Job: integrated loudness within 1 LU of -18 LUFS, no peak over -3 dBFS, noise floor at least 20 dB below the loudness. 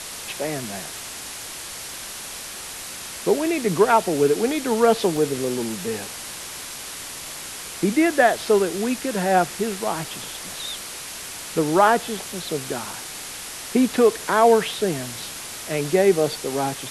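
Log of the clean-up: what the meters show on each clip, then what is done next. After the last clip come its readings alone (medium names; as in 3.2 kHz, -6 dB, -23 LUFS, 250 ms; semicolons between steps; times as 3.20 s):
dropouts 4; longest dropout 2.5 ms; noise floor -35 dBFS; noise floor target -43 dBFS; loudness -23.0 LUFS; peak level -3.5 dBFS; loudness target -18.0 LUFS
-> interpolate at 5.17/10.04/12.93/15.22 s, 2.5 ms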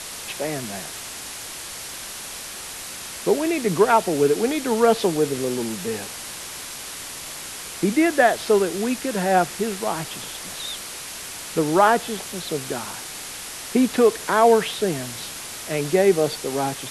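dropouts 0; noise floor -35 dBFS; noise floor target -43 dBFS
-> noise reduction 8 dB, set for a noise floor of -35 dBFS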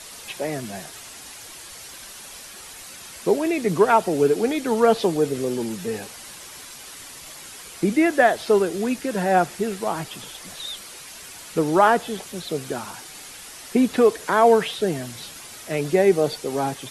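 noise floor -41 dBFS; noise floor target -42 dBFS
-> noise reduction 6 dB, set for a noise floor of -41 dBFS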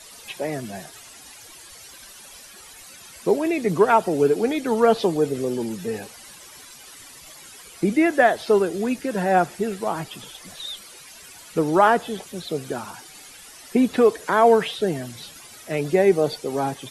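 noise floor -45 dBFS; loudness -21.5 LUFS; peak level -4.0 dBFS; loudness target -18.0 LUFS
-> trim +3.5 dB; peak limiter -3 dBFS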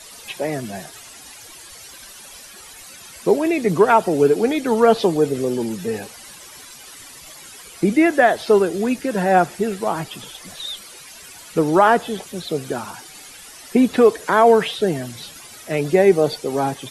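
loudness -18.5 LUFS; peak level -3.0 dBFS; noise floor -41 dBFS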